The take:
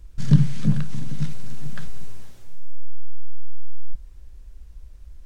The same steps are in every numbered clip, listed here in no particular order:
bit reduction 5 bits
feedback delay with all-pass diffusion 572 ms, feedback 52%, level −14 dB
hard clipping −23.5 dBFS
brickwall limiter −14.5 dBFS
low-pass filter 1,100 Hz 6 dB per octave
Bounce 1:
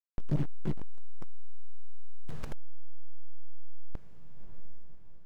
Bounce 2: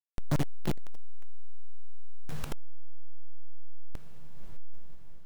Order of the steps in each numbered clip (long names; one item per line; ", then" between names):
bit reduction, then brickwall limiter, then feedback delay with all-pass diffusion, then hard clipping, then low-pass filter
low-pass filter, then bit reduction, then feedback delay with all-pass diffusion, then hard clipping, then brickwall limiter